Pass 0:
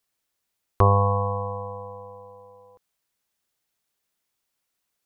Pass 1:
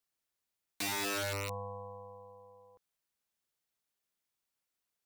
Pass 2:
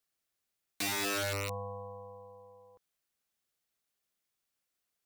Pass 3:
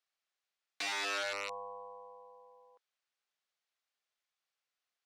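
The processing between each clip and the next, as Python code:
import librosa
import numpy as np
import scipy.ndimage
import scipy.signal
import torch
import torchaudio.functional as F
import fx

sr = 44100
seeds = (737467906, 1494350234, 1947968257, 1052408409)

y1 = (np.mod(10.0 ** (22.0 / 20.0) * x + 1.0, 2.0) - 1.0) / 10.0 ** (22.0 / 20.0)
y1 = F.gain(torch.from_numpy(y1), -8.5).numpy()
y2 = fx.notch(y1, sr, hz=940.0, q=9.8)
y2 = F.gain(torch.from_numpy(y2), 2.0).numpy()
y3 = fx.bandpass_edges(y2, sr, low_hz=620.0, high_hz=5000.0)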